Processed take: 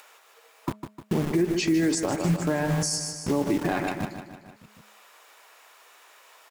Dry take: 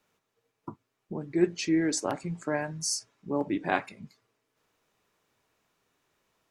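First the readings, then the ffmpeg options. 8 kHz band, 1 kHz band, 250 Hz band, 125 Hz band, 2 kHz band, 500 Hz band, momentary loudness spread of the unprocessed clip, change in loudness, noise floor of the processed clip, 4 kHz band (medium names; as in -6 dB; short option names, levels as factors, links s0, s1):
+3.0 dB, +2.5 dB, +5.0 dB, +10.5 dB, +2.5 dB, +3.5 dB, 21 LU, +3.5 dB, -57 dBFS, +4.0 dB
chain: -filter_complex "[0:a]bandreject=f=6100:w=18,acrossover=split=560|4600[s0][s1][s2];[s0]acrusher=bits=6:mix=0:aa=0.000001[s3];[s1]asoftclip=type=tanh:threshold=0.0708[s4];[s3][s4][s2]amix=inputs=3:normalize=0,bandreject=f=210.6:t=h:w=4,bandreject=f=421.2:t=h:w=4,bandreject=f=631.8:t=h:w=4,acompressor=threshold=0.0501:ratio=6,aecho=1:1:152|304|456|608|760:0.316|0.158|0.0791|0.0395|0.0198,acompressor=mode=upward:threshold=0.00316:ratio=2.5,equalizer=f=4400:w=1.5:g=-2,alimiter=level_in=1.41:limit=0.0631:level=0:latency=1:release=75,volume=0.708,lowshelf=f=330:g=5.5,volume=2.82"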